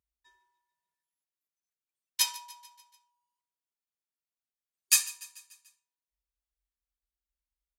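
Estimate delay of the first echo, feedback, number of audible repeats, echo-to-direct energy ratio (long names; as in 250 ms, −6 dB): 146 ms, 56%, 4, −17.5 dB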